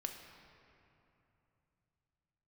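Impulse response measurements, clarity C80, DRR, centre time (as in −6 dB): 6.5 dB, 3.5 dB, 53 ms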